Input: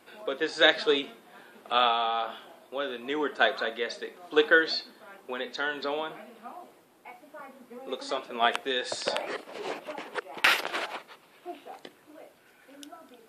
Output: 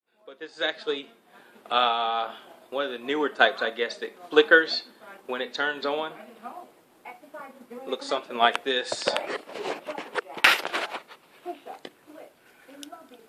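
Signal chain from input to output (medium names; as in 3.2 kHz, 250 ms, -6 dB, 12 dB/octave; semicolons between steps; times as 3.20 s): fade-in on the opening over 2.37 s; transient shaper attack +2 dB, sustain -3 dB; trim +3 dB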